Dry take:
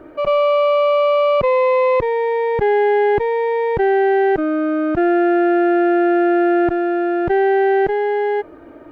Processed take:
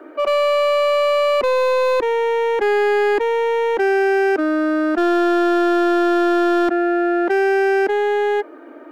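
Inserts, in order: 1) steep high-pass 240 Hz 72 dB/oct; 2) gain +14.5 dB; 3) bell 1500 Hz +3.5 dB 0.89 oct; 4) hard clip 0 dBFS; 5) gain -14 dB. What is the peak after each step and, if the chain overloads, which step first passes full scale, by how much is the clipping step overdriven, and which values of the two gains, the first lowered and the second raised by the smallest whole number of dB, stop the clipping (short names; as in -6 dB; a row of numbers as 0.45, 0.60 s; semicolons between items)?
-8.5, +6.0, +6.5, 0.0, -14.0 dBFS; step 2, 6.5 dB; step 2 +7.5 dB, step 5 -7 dB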